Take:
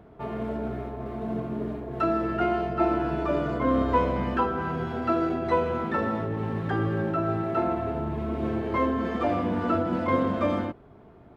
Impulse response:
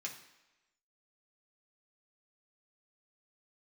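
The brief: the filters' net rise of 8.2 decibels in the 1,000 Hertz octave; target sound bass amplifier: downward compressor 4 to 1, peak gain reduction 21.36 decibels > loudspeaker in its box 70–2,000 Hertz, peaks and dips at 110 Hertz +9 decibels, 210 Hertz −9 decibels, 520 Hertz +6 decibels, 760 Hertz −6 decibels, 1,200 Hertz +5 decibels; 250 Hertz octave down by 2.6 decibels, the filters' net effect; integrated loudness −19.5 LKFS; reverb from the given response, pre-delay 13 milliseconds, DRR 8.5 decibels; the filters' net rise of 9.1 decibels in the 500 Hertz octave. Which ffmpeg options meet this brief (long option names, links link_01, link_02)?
-filter_complex "[0:a]equalizer=frequency=250:width_type=o:gain=-5.5,equalizer=frequency=500:width_type=o:gain=7,equalizer=frequency=1000:width_type=o:gain=7.5,asplit=2[link_01][link_02];[1:a]atrim=start_sample=2205,adelay=13[link_03];[link_02][link_03]afir=irnorm=-1:irlink=0,volume=-8dB[link_04];[link_01][link_04]amix=inputs=2:normalize=0,acompressor=threshold=-36dB:ratio=4,highpass=frequency=70:width=0.5412,highpass=frequency=70:width=1.3066,equalizer=frequency=110:width_type=q:width=4:gain=9,equalizer=frequency=210:width_type=q:width=4:gain=-9,equalizer=frequency=520:width_type=q:width=4:gain=6,equalizer=frequency=760:width_type=q:width=4:gain=-6,equalizer=frequency=1200:width_type=q:width=4:gain=5,lowpass=frequency=2000:width=0.5412,lowpass=frequency=2000:width=1.3066,volume=15.5dB"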